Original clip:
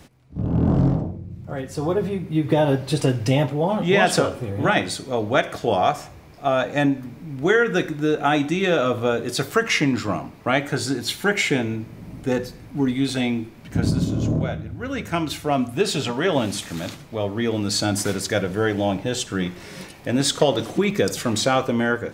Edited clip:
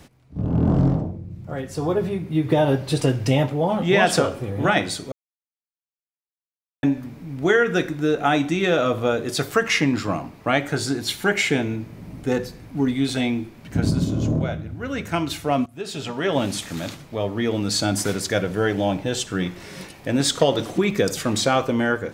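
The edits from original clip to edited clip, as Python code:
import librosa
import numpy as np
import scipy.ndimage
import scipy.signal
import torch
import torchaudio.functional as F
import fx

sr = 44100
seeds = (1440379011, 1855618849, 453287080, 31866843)

y = fx.edit(x, sr, fx.silence(start_s=5.12, length_s=1.71),
    fx.fade_in_from(start_s=15.66, length_s=0.78, floor_db=-20.0), tone=tone)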